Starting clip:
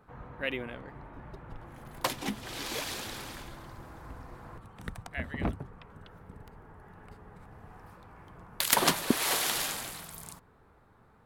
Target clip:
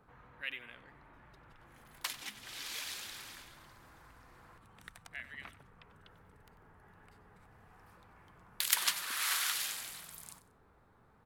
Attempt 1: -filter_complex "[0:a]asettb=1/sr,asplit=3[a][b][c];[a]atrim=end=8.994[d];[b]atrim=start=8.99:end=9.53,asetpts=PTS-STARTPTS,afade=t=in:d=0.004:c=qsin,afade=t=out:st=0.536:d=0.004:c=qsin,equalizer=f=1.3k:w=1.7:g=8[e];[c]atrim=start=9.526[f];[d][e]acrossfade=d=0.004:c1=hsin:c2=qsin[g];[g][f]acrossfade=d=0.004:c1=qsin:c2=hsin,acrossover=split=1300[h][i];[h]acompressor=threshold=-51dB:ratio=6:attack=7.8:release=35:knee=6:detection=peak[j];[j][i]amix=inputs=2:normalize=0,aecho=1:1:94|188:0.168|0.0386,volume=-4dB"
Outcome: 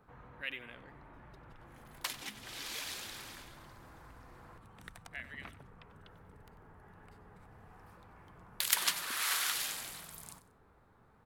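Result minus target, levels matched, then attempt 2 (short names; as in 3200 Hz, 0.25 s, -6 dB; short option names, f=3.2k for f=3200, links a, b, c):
compressor: peak gain reduction -6 dB
-filter_complex "[0:a]asettb=1/sr,asplit=3[a][b][c];[a]atrim=end=8.994[d];[b]atrim=start=8.99:end=9.53,asetpts=PTS-STARTPTS,afade=t=in:d=0.004:c=qsin,afade=t=out:st=0.536:d=0.004:c=qsin,equalizer=f=1.3k:w=1.7:g=8[e];[c]atrim=start=9.526[f];[d][e]acrossfade=d=0.004:c1=hsin:c2=qsin[g];[g][f]acrossfade=d=0.004:c1=qsin:c2=hsin,acrossover=split=1300[h][i];[h]acompressor=threshold=-58dB:ratio=6:attack=7.8:release=35:knee=6:detection=peak[j];[j][i]amix=inputs=2:normalize=0,aecho=1:1:94|188:0.168|0.0386,volume=-4dB"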